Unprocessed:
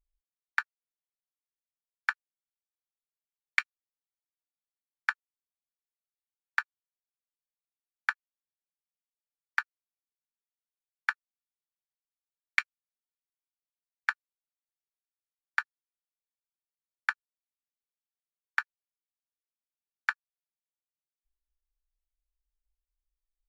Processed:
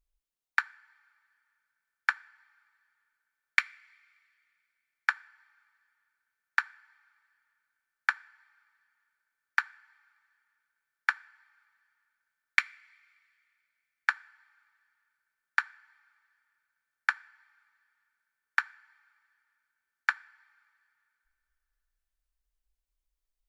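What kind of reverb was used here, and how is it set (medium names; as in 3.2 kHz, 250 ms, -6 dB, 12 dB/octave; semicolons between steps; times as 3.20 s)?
two-slope reverb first 0.5 s, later 2.7 s, from -14 dB, DRR 19 dB; trim +2.5 dB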